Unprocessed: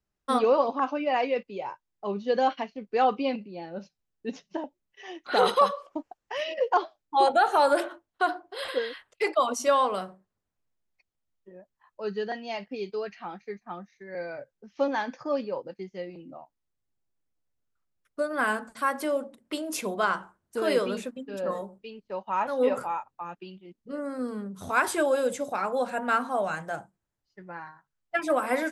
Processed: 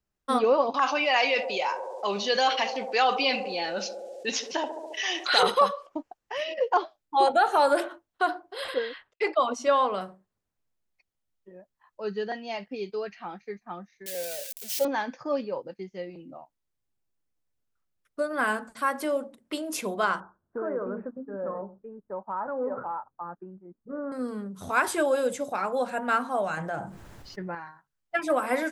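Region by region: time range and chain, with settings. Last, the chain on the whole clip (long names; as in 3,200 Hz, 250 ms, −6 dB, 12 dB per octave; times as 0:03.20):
0:00.74–0:05.43: meter weighting curve ITU-R 468 + feedback echo with a band-pass in the loop 70 ms, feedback 79%, band-pass 510 Hz, level −15.5 dB + envelope flattener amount 50%
0:08.74–0:10.01: low-pass filter 4,700 Hz + noise gate with hold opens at −44 dBFS, closes at −48 dBFS
0:14.06–0:14.85: spike at every zero crossing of −22.5 dBFS + low shelf with overshoot 200 Hz −7 dB, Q 1.5 + phaser with its sweep stopped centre 300 Hz, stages 6
0:20.20–0:24.12: Butterworth low-pass 1,600 Hz 48 dB per octave + downward compressor 2.5 to 1, threshold −29 dBFS
0:26.57–0:27.55: high-shelf EQ 3,900 Hz −9.5 dB + envelope flattener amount 70%
whole clip: no processing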